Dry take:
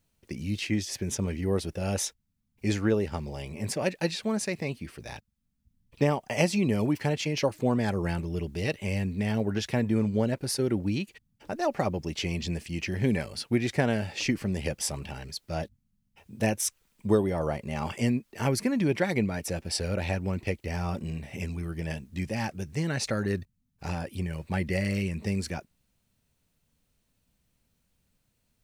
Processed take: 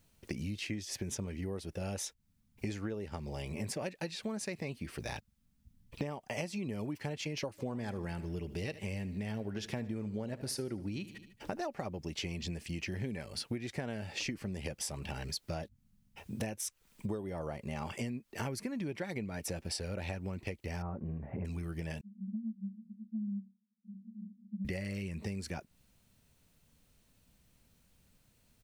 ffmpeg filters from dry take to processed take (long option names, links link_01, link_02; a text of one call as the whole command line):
ffmpeg -i in.wav -filter_complex "[0:a]asplit=3[link_01][link_02][link_03];[link_01]afade=type=out:start_time=7.57:duration=0.02[link_04];[link_02]aecho=1:1:75|150|225|300:0.141|0.0678|0.0325|0.0156,afade=type=in:start_time=7.57:duration=0.02,afade=type=out:start_time=11.61:duration=0.02[link_05];[link_03]afade=type=in:start_time=11.61:duration=0.02[link_06];[link_04][link_05][link_06]amix=inputs=3:normalize=0,asettb=1/sr,asplit=3[link_07][link_08][link_09];[link_07]atrim=end=20.824[link_10];[link_08]atrim=start=20.82:end=21.45,asetpts=PTS-STARTPTS,afade=type=in:duration=0.004:curve=qsin,afade=type=out:start_time=0.626:duration=0.004:curve=qsin,lowpass=frequency=1400:width=0.5412,lowpass=frequency=1400:width=1.3066[link_11];[link_09]atrim=start=21.446[link_12];[link_10][link_11]acrossfade=duration=0.004:curve1=hsin:curve2=qsin[link_13];[link_13][link_12]acrossfade=duration=0.004:curve1=qsin:curve2=hsin,asettb=1/sr,asplit=3[link_14][link_15][link_16];[link_14]atrim=end=22.014[link_17];[link_15]atrim=start=22.01:end=24.65,asetpts=PTS-STARTPTS,afade=type=in:duration=0.004:curve=qsin,afade=type=out:start_time=2.636:duration=0.004:curve=qsin,asuperpass=centerf=210:order=12:qfactor=5.7[link_18];[link_16]atrim=start=24.646[link_19];[link_17][link_18]acrossfade=duration=0.004:curve1=hsin:curve2=qsin[link_20];[link_20][link_19]acrossfade=duration=0.004:curve1=qsin:curve2=hsin,acompressor=threshold=-40dB:ratio=12,volume=5dB" out.wav